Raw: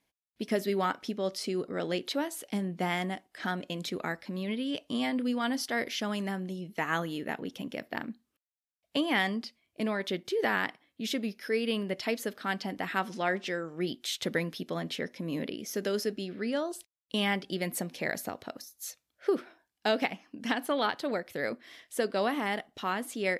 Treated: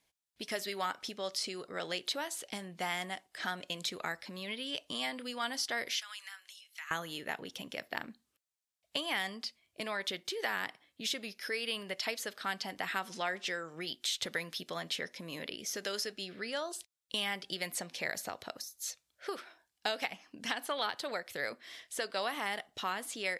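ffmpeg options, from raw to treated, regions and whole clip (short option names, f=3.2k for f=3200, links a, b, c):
-filter_complex "[0:a]asettb=1/sr,asplit=3[a][b][c];[a]atrim=end=6.004[d];[b]atrim=start=6:end=6.91,asetpts=PTS-STARTPTS,afade=t=in:d=0.004:c=qsin,afade=t=out:st=0.906:d=0.004:c=qsin,highpass=f=1.4k:w=0.5412,highpass=f=1.4k:w=1.3066,bandreject=f=1.8k:w=24,acompressor=threshold=-45dB:ratio=2.5:attack=3.2:release=140:knee=1:detection=peak[e];[c]atrim=start=6.906[f];[d][e]acrossfade=d=0.004:c1=hsin:c2=qsin[g];[g][f]acrossfade=d=0.004:c1=qsin:c2=hsin,equalizer=f=250:t=o:w=1:g=-6,equalizer=f=4k:t=o:w=1:g=3,equalizer=f=8k:t=o:w=1:g=5,acrossover=split=670|7300[h][i][j];[h]acompressor=threshold=-45dB:ratio=4[k];[i]acompressor=threshold=-32dB:ratio=4[l];[j]acompressor=threshold=-46dB:ratio=4[m];[k][l][m]amix=inputs=3:normalize=0"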